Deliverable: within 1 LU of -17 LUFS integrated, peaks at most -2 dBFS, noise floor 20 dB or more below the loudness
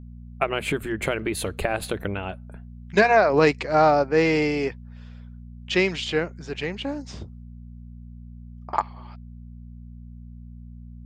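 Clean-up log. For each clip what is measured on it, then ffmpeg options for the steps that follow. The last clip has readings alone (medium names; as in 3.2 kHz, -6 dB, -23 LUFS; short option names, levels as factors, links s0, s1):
hum 60 Hz; highest harmonic 240 Hz; hum level -39 dBFS; loudness -23.5 LUFS; peak level -3.5 dBFS; loudness target -17.0 LUFS
-> -af "bandreject=f=60:t=h:w=4,bandreject=f=120:t=h:w=4,bandreject=f=180:t=h:w=4,bandreject=f=240:t=h:w=4"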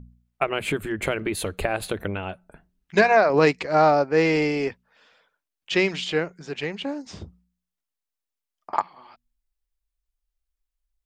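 hum not found; loudness -23.5 LUFS; peak level -4.0 dBFS; loudness target -17.0 LUFS
-> -af "volume=2.11,alimiter=limit=0.794:level=0:latency=1"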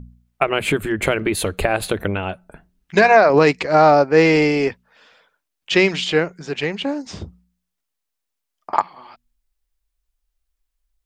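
loudness -17.5 LUFS; peak level -2.0 dBFS; noise floor -79 dBFS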